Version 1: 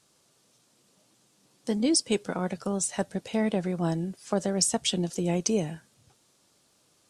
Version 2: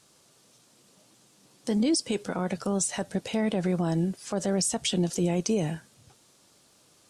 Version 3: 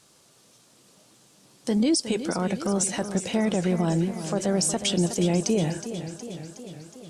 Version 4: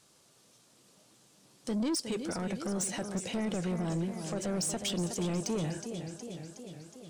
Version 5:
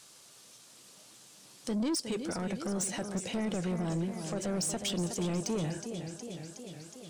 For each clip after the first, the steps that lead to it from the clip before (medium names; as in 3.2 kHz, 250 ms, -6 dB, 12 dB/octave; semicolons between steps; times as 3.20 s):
peak limiter -22.5 dBFS, peak gain reduction 11 dB; trim +5 dB
modulated delay 365 ms, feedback 64%, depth 57 cents, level -11 dB; trim +2.5 dB
saturation -21.5 dBFS, distortion -12 dB; trim -5.5 dB
tape noise reduction on one side only encoder only